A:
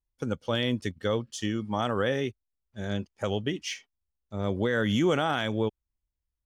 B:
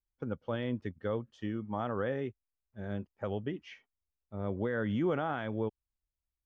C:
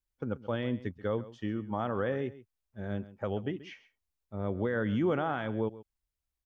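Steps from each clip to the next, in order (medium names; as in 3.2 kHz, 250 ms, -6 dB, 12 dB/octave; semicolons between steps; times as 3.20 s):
low-pass 1.7 kHz 12 dB/octave; trim -6 dB
delay 133 ms -17 dB; trim +2 dB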